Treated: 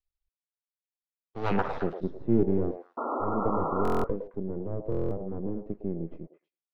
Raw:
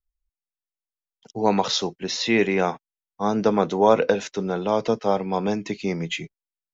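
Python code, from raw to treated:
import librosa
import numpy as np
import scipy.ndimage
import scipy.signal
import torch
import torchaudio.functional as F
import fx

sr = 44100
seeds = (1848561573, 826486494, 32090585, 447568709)

p1 = fx.low_shelf(x, sr, hz=500.0, db=7.0, at=(1.51, 2.71))
p2 = np.maximum(p1, 0.0)
p3 = fx.filter_sweep_lowpass(p2, sr, from_hz=4200.0, to_hz=350.0, start_s=1.43, end_s=1.95, q=1.4)
p4 = np.clip(p3, -10.0 ** (-15.5 / 20.0), 10.0 ** (-15.5 / 20.0))
p5 = p3 + F.gain(torch.from_numpy(p4), -11.0).numpy()
p6 = fx.spec_paint(p5, sr, seeds[0], shape='noise', start_s=2.97, length_s=0.9, low_hz=230.0, high_hz=1400.0, level_db=-25.0)
p7 = p6 + fx.echo_stepped(p6, sr, ms=108, hz=630.0, octaves=1.4, feedback_pct=70, wet_db=-4.0, dry=0)
p8 = fx.buffer_glitch(p7, sr, at_s=(1.12, 3.83, 4.9), block=1024, repeats=8)
y = F.gain(torch.from_numpy(p8), -6.5).numpy()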